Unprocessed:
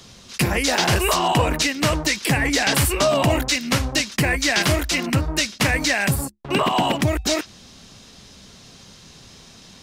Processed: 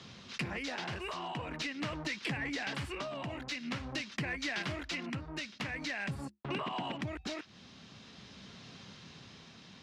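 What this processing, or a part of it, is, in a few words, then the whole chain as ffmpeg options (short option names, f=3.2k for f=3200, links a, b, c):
AM radio: -af "highpass=110,lowpass=3.4k,acompressor=threshold=-30dB:ratio=6,asoftclip=type=tanh:threshold=-21dB,tremolo=f=0.46:d=0.3,equalizer=f=540:t=o:w=1.8:g=-4.5,volume=-2dB"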